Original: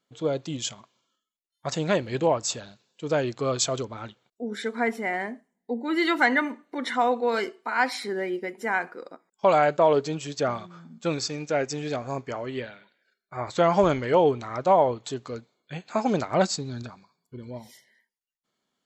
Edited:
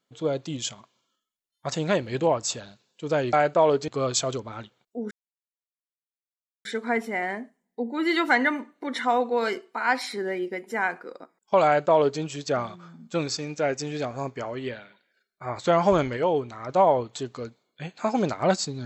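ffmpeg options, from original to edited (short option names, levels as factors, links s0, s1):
-filter_complex "[0:a]asplit=6[s0][s1][s2][s3][s4][s5];[s0]atrim=end=3.332[s6];[s1]atrim=start=9.558:end=10.112[s7];[s2]atrim=start=3.328:end=4.56,asetpts=PTS-STARTPTS,afade=t=out:st=1.228:d=0.004:c=hsin,apad=pad_dur=1.54[s8];[s3]atrim=start=4.56:end=14.082,asetpts=PTS-STARTPTS,afade=t=in:d=0.004:c=hsin[s9];[s4]atrim=start=14.078:end=14.602,asetpts=PTS-STARTPTS,volume=0.631[s10];[s5]atrim=start=14.598[s11];[s6][s7]acrossfade=d=0.004:c1=hsin:c2=hsin[s12];[s8][s9]concat=n=2:v=0:a=1[s13];[s12][s13]acrossfade=d=0.004:c1=hsin:c2=hsin[s14];[s14][s10]acrossfade=d=0.004:c1=hsin:c2=hsin[s15];[s15][s11]acrossfade=d=0.004:c1=hsin:c2=hsin"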